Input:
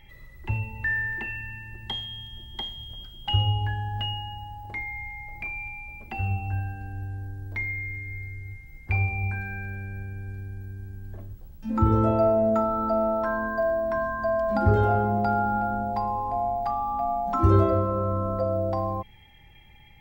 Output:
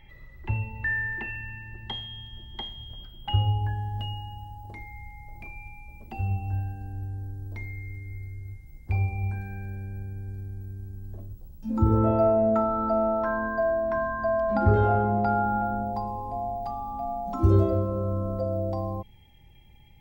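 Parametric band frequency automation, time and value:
parametric band −13 dB 1.7 octaves
0:02.89 11,000 Hz
0:03.93 1,900 Hz
0:11.79 1,900 Hz
0:12.32 12,000 Hz
0:15.29 12,000 Hz
0:16.08 1,600 Hz

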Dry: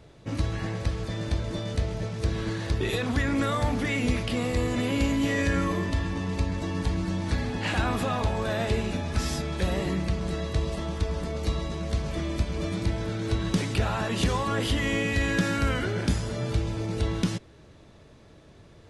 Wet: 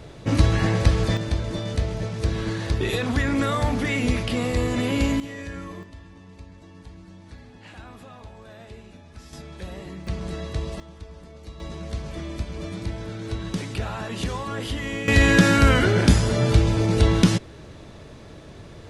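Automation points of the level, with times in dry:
+10 dB
from 0:01.17 +3 dB
from 0:05.20 −10 dB
from 0:05.83 −16.5 dB
from 0:09.33 −9.5 dB
from 0:10.07 −1.5 dB
from 0:10.80 −13 dB
from 0:11.60 −3 dB
from 0:15.08 +9.5 dB

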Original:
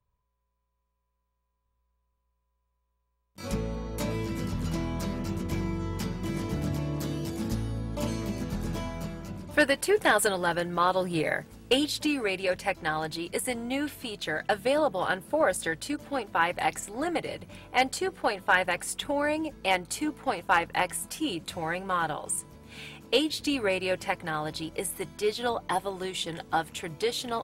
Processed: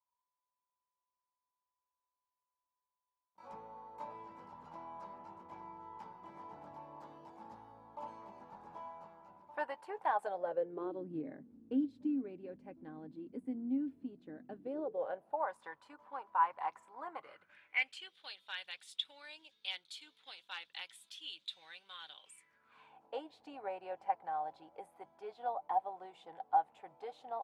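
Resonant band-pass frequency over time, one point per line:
resonant band-pass, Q 7.1
0:10.12 900 Hz
0:11.10 260 Hz
0:14.52 260 Hz
0:15.50 1,000 Hz
0:17.13 1,000 Hz
0:18.15 3,600 Hz
0:22.15 3,600 Hz
0:22.96 780 Hz

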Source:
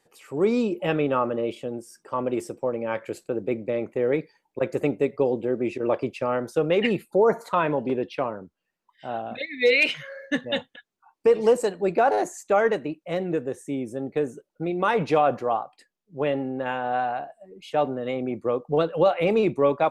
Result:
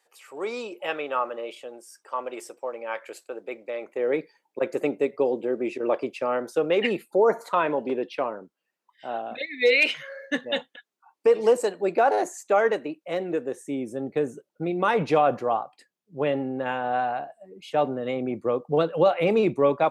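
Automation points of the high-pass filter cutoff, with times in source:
0:03.79 670 Hz
0:04.19 270 Hz
0:13.33 270 Hz
0:14.32 91 Hz

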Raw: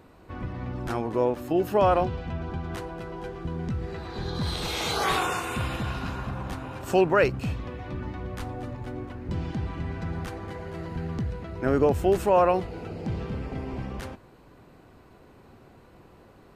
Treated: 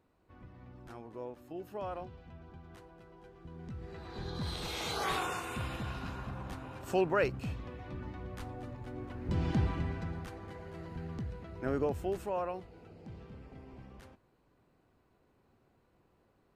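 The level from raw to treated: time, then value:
0:03.30 −19 dB
0:04.14 −8.5 dB
0:08.89 −8.5 dB
0:09.59 +1.5 dB
0:10.23 −9.5 dB
0:11.69 −9.5 dB
0:12.65 −17.5 dB

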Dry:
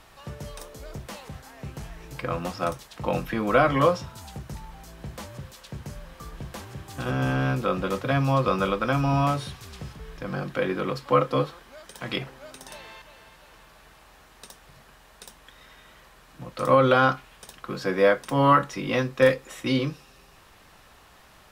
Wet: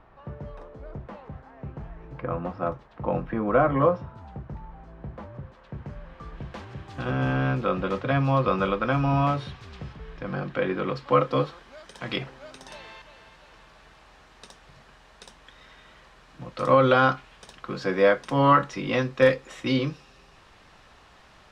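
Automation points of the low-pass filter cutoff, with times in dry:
0:05.43 1,300 Hz
0:06.62 3,400 Hz
0:10.74 3,400 Hz
0:11.46 5,900 Hz

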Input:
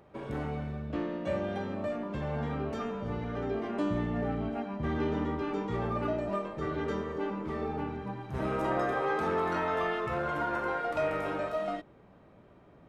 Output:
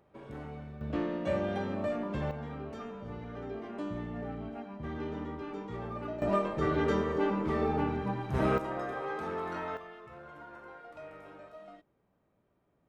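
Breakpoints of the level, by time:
−8 dB
from 0:00.81 +1 dB
from 0:02.31 −7 dB
from 0:06.22 +4.5 dB
from 0:08.58 −6.5 dB
from 0:09.77 −17 dB

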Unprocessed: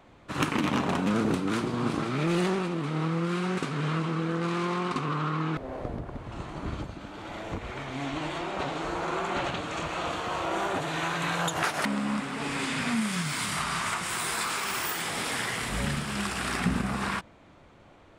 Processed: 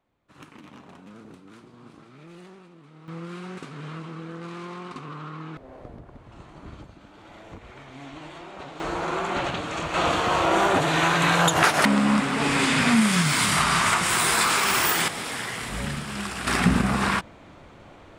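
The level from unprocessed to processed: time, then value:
−20 dB
from 0:03.08 −8 dB
from 0:08.80 +3 dB
from 0:09.94 +9 dB
from 0:15.08 −0.5 dB
from 0:16.47 +7 dB

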